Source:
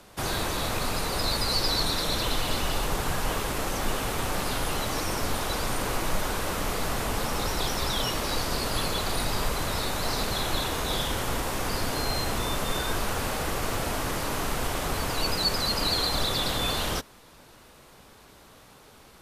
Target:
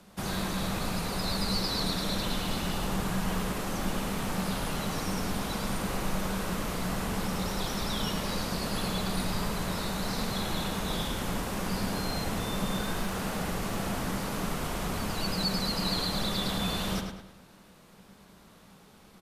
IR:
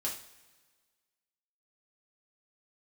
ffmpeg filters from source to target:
-filter_complex "[0:a]equalizer=f=190:w=3.4:g=14.5,asettb=1/sr,asplit=3[a][b][c];[a]atrim=end=12.724[d];[b]atrim=start=12.72:end=13.31,asetpts=PTS-STARTPTS,afade=t=in:d=0.004:c=qsin,afade=t=out:st=0.586:d=0.004:c=qsin,aeval=exprs='clip(val(0),-1,0.0891)':c=same[e];[c]atrim=start=13.306[f];[d][e]acrossfade=d=0.004:c1=hsin:c2=qsin[g];[g][f]acrossfade=d=0.004:c1=qsin:c2=hsin,asplit=2[h][i];[i]adelay=104,lowpass=f=4.7k:p=1,volume=-5dB,asplit=2[j][k];[k]adelay=104,lowpass=f=4.7k:p=1,volume=0.44,asplit=2[l][m];[m]adelay=104,lowpass=f=4.7k:p=1,volume=0.44,asplit=2[n][o];[o]adelay=104,lowpass=f=4.7k:p=1,volume=0.44,asplit=2[p][q];[q]adelay=104,lowpass=f=4.7k:p=1,volume=0.44[r];[h][j][l][n][p][r]amix=inputs=6:normalize=0,volume=-6dB"

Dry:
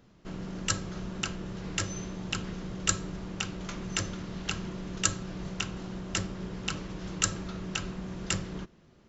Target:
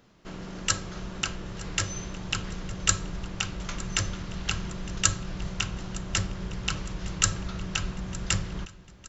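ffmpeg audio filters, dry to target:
-filter_complex "[0:a]lowshelf=f=380:g=-7,asplit=2[a][b];[b]aecho=0:1:910|1820|2730|3640:0.112|0.0572|0.0292|0.0149[c];[a][c]amix=inputs=2:normalize=0,asubboost=boost=4.5:cutoff=130,volume=4dB"

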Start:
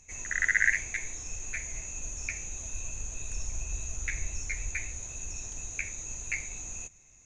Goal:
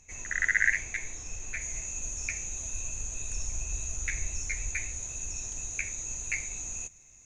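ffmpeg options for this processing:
-af "asetnsamples=n=441:p=0,asendcmd='1.61 highshelf g 6',highshelf=f=6.3k:g=-3"

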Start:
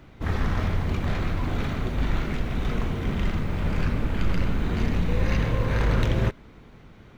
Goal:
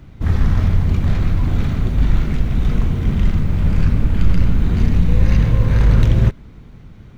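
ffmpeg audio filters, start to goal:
-af "bass=f=250:g=11,treble=f=4k:g=4"

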